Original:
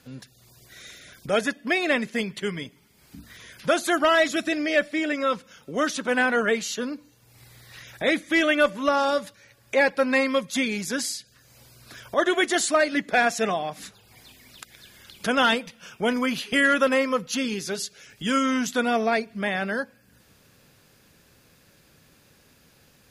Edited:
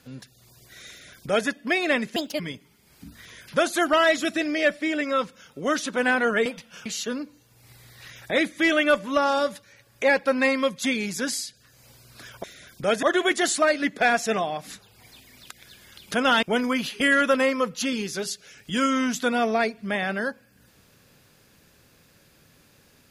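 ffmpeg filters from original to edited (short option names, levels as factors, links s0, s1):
-filter_complex "[0:a]asplit=8[s0][s1][s2][s3][s4][s5][s6][s7];[s0]atrim=end=2.164[s8];[s1]atrim=start=2.16:end=2.51,asetpts=PTS-STARTPTS,asetrate=65268,aresample=44100,atrim=end_sample=10429,asetpts=PTS-STARTPTS[s9];[s2]atrim=start=2.506:end=6.572[s10];[s3]atrim=start=15.548:end=15.952[s11];[s4]atrim=start=6.568:end=12.152[s12];[s5]atrim=start=0.888:end=1.482[s13];[s6]atrim=start=12.148:end=15.552[s14];[s7]atrim=start=15.948[s15];[s8][s9]acrossfade=d=0.004:c1=hsin:c2=hsin[s16];[s16][s10]acrossfade=d=0.004:c1=hsin:c2=hsin[s17];[s17][s11]acrossfade=d=0.004:c1=hsin:c2=hsin[s18];[s18][s12]acrossfade=d=0.004:c1=hsin:c2=hsin[s19];[s19][s13]acrossfade=d=0.004:c1=hsin:c2=hsin[s20];[s20][s14]acrossfade=d=0.004:c1=hsin:c2=hsin[s21];[s21][s15]acrossfade=d=0.004:c1=hsin:c2=hsin"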